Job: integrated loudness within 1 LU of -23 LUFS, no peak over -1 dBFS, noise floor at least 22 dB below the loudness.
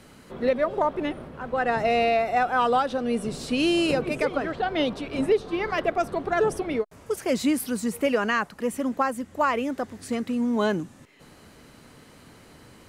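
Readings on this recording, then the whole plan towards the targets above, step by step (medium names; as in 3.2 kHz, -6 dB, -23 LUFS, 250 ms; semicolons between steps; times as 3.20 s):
loudness -25.5 LUFS; peak level -12.5 dBFS; loudness target -23.0 LUFS
-> trim +2.5 dB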